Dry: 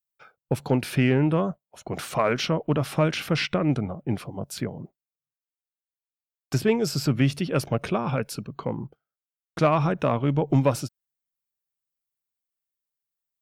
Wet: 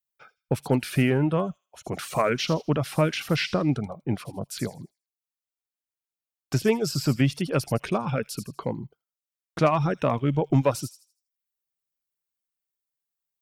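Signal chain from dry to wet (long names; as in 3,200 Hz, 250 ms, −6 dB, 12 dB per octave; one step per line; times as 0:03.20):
reverb reduction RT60 0.53 s
delay with a high-pass on its return 80 ms, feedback 31%, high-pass 5,600 Hz, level −5 dB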